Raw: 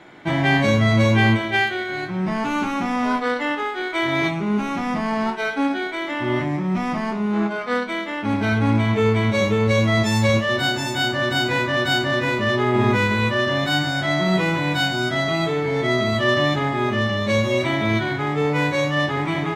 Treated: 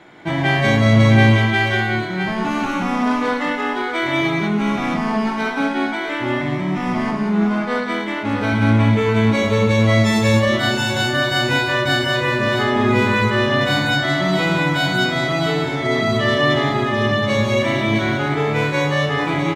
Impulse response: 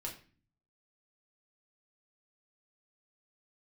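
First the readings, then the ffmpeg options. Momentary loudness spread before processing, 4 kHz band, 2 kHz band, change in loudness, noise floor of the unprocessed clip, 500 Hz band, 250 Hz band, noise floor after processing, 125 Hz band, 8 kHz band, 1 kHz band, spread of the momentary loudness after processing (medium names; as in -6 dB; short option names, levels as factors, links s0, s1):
6 LU, +2.5 dB, +3.0 dB, +3.0 dB, -28 dBFS, +2.0 dB, +3.0 dB, -24 dBFS, +3.5 dB, +2.5 dB, +2.5 dB, 6 LU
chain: -af "aecho=1:1:110|182|657:0.335|0.668|0.422"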